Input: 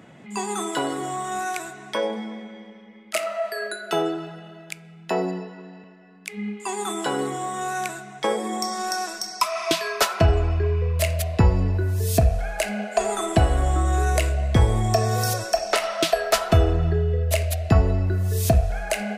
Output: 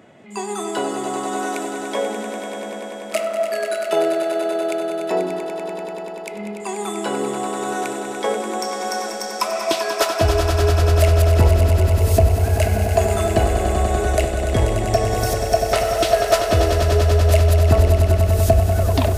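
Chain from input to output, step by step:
turntable brake at the end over 0.43 s
thirty-one-band graphic EQ 160 Hz −8 dB, 400 Hz +5 dB, 630 Hz +6 dB
echo that builds up and dies away 97 ms, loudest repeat 5, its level −9.5 dB
level −1 dB

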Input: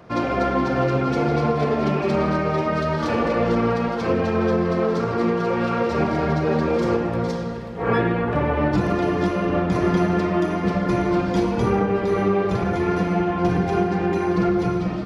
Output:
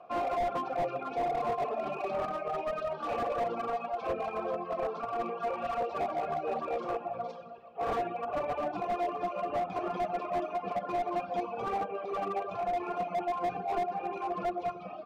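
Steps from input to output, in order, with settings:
reverb reduction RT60 1.8 s
formant filter a
slew-rate limiting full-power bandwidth 18 Hz
level +4 dB

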